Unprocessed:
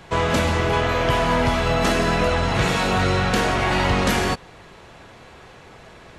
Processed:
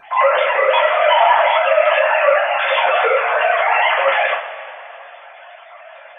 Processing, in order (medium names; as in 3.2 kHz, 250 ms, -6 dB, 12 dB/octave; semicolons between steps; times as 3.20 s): formants replaced by sine waves; vibrato 2.7 Hz 13 cents; two-slope reverb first 0.32 s, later 2.8 s, from -18 dB, DRR -6 dB; trim -1 dB